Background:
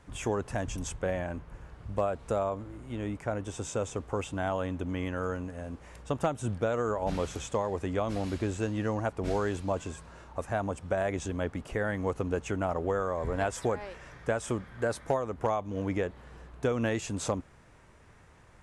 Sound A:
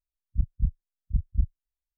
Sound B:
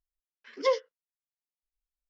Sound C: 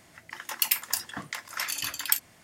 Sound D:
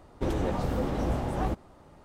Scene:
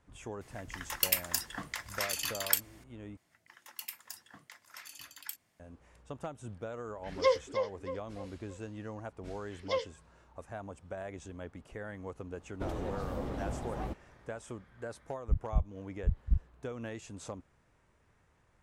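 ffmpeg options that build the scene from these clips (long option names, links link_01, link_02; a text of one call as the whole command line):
ffmpeg -i bed.wav -i cue0.wav -i cue1.wav -i cue2.wav -i cue3.wav -filter_complex "[3:a]asplit=2[link_01][link_02];[2:a]asplit=2[link_03][link_04];[0:a]volume=-12dB[link_05];[link_03]asplit=2[link_06][link_07];[link_07]adelay=312,lowpass=frequency=2800:poles=1,volume=-6.5dB,asplit=2[link_08][link_09];[link_09]adelay=312,lowpass=frequency=2800:poles=1,volume=0.41,asplit=2[link_10][link_11];[link_11]adelay=312,lowpass=frequency=2800:poles=1,volume=0.41,asplit=2[link_12][link_13];[link_13]adelay=312,lowpass=frequency=2800:poles=1,volume=0.41,asplit=2[link_14][link_15];[link_15]adelay=312,lowpass=frequency=2800:poles=1,volume=0.41[link_16];[link_06][link_08][link_10][link_12][link_14][link_16]amix=inputs=6:normalize=0[link_17];[link_04]equalizer=frequency=3100:width_type=o:width=0.77:gain=7.5[link_18];[link_05]asplit=2[link_19][link_20];[link_19]atrim=end=3.174[link_21];[link_02]atrim=end=2.43,asetpts=PTS-STARTPTS,volume=-17.5dB[link_22];[link_20]atrim=start=5.596[link_23];[link_01]atrim=end=2.43,asetpts=PTS-STARTPTS,volume=-3.5dB,afade=type=in:duration=0.004:curve=hsin,afade=type=out:start_time=2.426:duration=0.004:curve=hsin,adelay=410[link_24];[link_17]atrim=end=2.09,asetpts=PTS-STARTPTS,volume=-1dB,afade=type=in:duration=0.004:curve=hsin,afade=type=out:start_time=2.086:duration=0.004:curve=hsin,adelay=6590[link_25];[link_18]atrim=end=2.09,asetpts=PTS-STARTPTS,volume=-8dB,afade=type=in:duration=0.004:curve=hsin,afade=type=out:start_time=2.086:duration=0.004:curve=hsin,adelay=399546S[link_26];[4:a]atrim=end=2.04,asetpts=PTS-STARTPTS,volume=-9dB,afade=type=in:duration=0.004:curve=hsin,afade=type=out:start_time=2.036:duration=0.004:curve=hsin,adelay=12390[link_27];[1:a]atrim=end=1.97,asetpts=PTS-STARTPTS,volume=-4dB,afade=type=in:duration=0.004:curve=hsin,afade=type=out:start_time=1.966:duration=0.004:curve=hsin,adelay=14930[link_28];[link_21][link_22]acrossfade=duration=0.004:curve1=hsin:curve2=hsin[link_29];[link_29][link_23]acrossfade=duration=0.004:curve1=hsin:curve2=hsin[link_30];[link_30][link_24][link_25][link_26][link_27][link_28]amix=inputs=6:normalize=0" out.wav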